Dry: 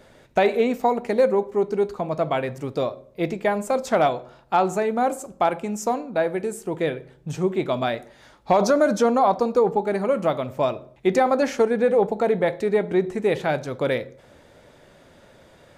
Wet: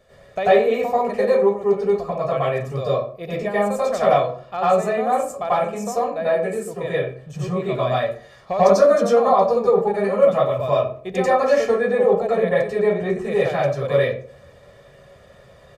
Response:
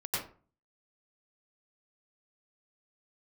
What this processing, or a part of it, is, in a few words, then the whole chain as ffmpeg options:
microphone above a desk: -filter_complex "[0:a]aecho=1:1:1.7:0.62[link_01];[1:a]atrim=start_sample=2205[link_02];[link_01][link_02]afir=irnorm=-1:irlink=0,volume=-4dB"

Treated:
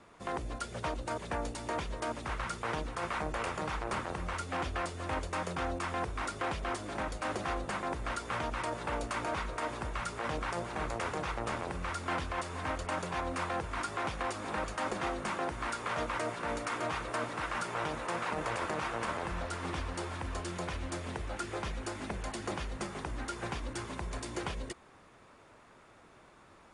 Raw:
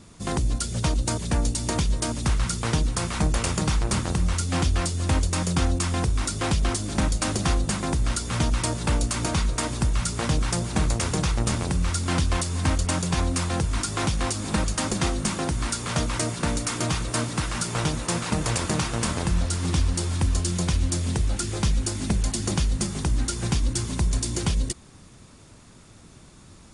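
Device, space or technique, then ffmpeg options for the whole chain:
DJ mixer with the lows and highs turned down: -filter_complex "[0:a]acrossover=split=400 2500:gain=0.141 1 0.126[link_01][link_02][link_03];[link_01][link_02][link_03]amix=inputs=3:normalize=0,alimiter=level_in=0.5dB:limit=-24dB:level=0:latency=1:release=40,volume=-0.5dB"

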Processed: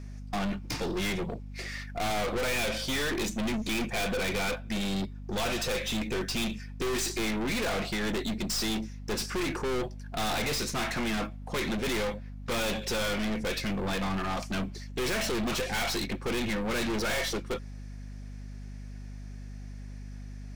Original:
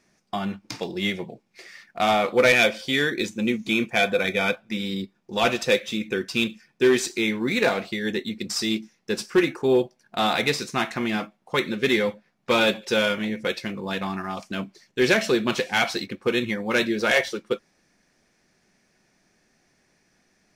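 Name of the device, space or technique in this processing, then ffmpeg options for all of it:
valve amplifier with mains hum: -af "aeval=exprs='(tanh(63.1*val(0)+0.35)-tanh(0.35))/63.1':channel_layout=same,aeval=exprs='val(0)+0.00447*(sin(2*PI*50*n/s)+sin(2*PI*2*50*n/s)/2+sin(2*PI*3*50*n/s)/3+sin(2*PI*4*50*n/s)/4+sin(2*PI*5*50*n/s)/5)':channel_layout=same,volume=7dB"

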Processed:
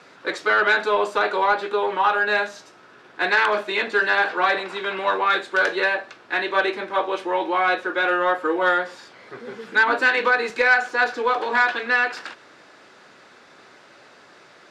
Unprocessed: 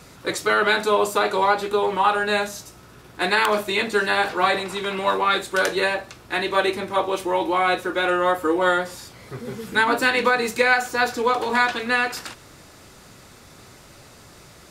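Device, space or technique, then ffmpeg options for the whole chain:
intercom: -filter_complex "[0:a]highpass=330,lowpass=3900,equalizer=frequency=1600:width_type=o:width=0.29:gain=6,asoftclip=type=tanh:threshold=-7.5dB,asettb=1/sr,asplit=3[link_01][link_02][link_03];[link_01]atrim=end=10.104[link_04];[link_02]atrim=start=10.1:end=10.5,asetpts=PTS-STARTPTS,afade=type=in:duration=0.004:curve=qsin,afade=type=out:start_time=0.396:duration=0.004:curve=qsin,highpass=160[link_05];[link_03]atrim=start=10.496[link_06];[link_04][link_05]acrossfade=duration=0.004:curve1=hsin:curve2=qsin[link_07];[link_07][link_06]acrossfade=duration=0.004:curve1=qsin:curve2=hsin"

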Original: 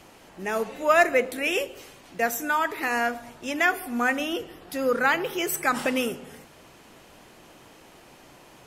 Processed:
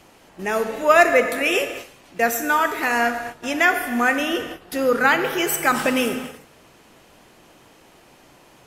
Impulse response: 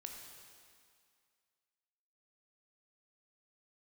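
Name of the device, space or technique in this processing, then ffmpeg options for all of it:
keyed gated reverb: -filter_complex "[0:a]asplit=3[link_01][link_02][link_03];[1:a]atrim=start_sample=2205[link_04];[link_02][link_04]afir=irnorm=-1:irlink=0[link_05];[link_03]apad=whole_len=382290[link_06];[link_05][link_06]sidechaingate=range=-19dB:threshold=-42dB:ratio=16:detection=peak,volume=5.5dB[link_07];[link_01][link_07]amix=inputs=2:normalize=0,volume=-1dB"

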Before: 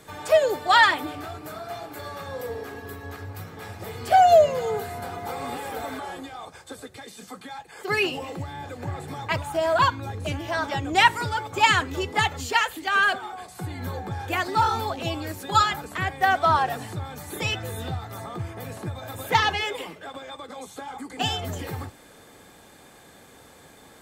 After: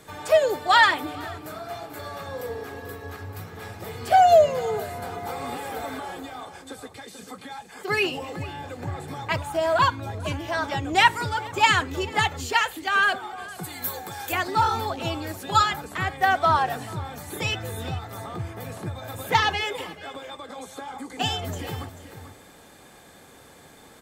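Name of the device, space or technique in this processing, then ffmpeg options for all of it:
ducked delay: -filter_complex "[0:a]asplit=3[link_01][link_02][link_03];[link_01]afade=type=out:start_time=13.63:duration=0.02[link_04];[link_02]aemphasis=mode=production:type=riaa,afade=type=in:start_time=13.63:duration=0.02,afade=type=out:start_time=14.31:duration=0.02[link_05];[link_03]afade=type=in:start_time=14.31:duration=0.02[link_06];[link_04][link_05][link_06]amix=inputs=3:normalize=0,asplit=3[link_07][link_08][link_09];[link_08]adelay=438,volume=-9dB[link_10];[link_09]apad=whole_len=1078572[link_11];[link_10][link_11]sidechaincompress=threshold=-33dB:ratio=8:attack=7.8:release=867[link_12];[link_07][link_12]amix=inputs=2:normalize=0"

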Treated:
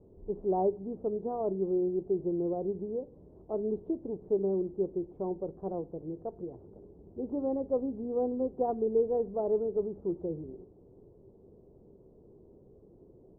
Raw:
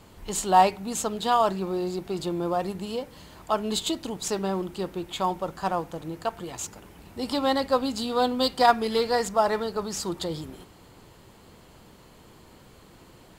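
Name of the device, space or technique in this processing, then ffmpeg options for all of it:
under water: -af "lowpass=frequency=590:width=0.5412,lowpass=frequency=590:width=1.3066,equalizer=frequency=400:width_type=o:width=0.44:gain=10,volume=-6.5dB"

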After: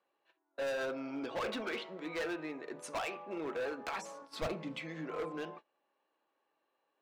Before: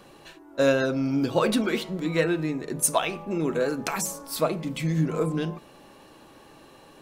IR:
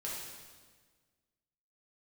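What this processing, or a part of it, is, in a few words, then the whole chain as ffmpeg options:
walkie-talkie: -filter_complex "[0:a]highpass=500,lowpass=2800,asoftclip=type=hard:threshold=-28.5dB,agate=range=-22dB:threshold=-45dB:ratio=16:detection=peak,asettb=1/sr,asplit=3[link_01][link_02][link_03];[link_01]atrim=end=4.224[link_04];[link_02]atrim=start=4.22:end=4.79,asetpts=PTS-STARTPTS,afade=type=in:duration=0.004:curve=qsin,afade=type=out:start_time=0.566:duration=0.004:curve=qsin,bass=frequency=250:gain=13,treble=frequency=4000:gain=5[link_05];[link_03]atrim=start=4.786[link_06];[link_04][link_05]acrossfade=duration=0.004:curve1=hsin:curve2=qsin[link_07];[link_07][link_06]acrossfade=duration=0.004:curve1=qsin:curve2=hsin,volume=-5dB"

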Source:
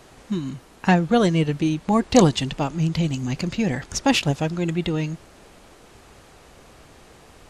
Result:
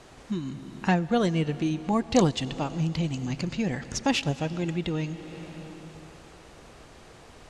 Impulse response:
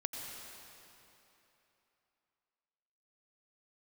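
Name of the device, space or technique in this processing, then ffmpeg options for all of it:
ducked reverb: -filter_complex "[0:a]asplit=3[link_01][link_02][link_03];[1:a]atrim=start_sample=2205[link_04];[link_02][link_04]afir=irnorm=-1:irlink=0[link_05];[link_03]apad=whole_len=330658[link_06];[link_05][link_06]sidechaincompress=threshold=-32dB:ratio=8:attack=31:release=474,volume=0dB[link_07];[link_01][link_07]amix=inputs=2:normalize=0,lowpass=9100,volume=-7dB"

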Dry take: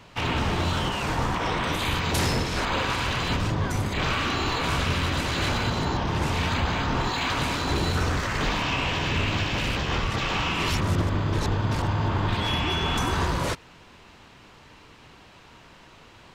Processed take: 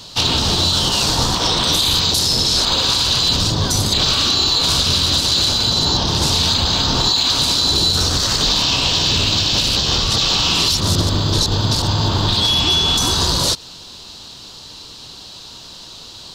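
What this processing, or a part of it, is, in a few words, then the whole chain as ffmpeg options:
over-bright horn tweeter: -af "highshelf=frequency=3000:width_type=q:width=3:gain=11.5,alimiter=limit=-13.5dB:level=0:latency=1:release=97,volume=7dB"

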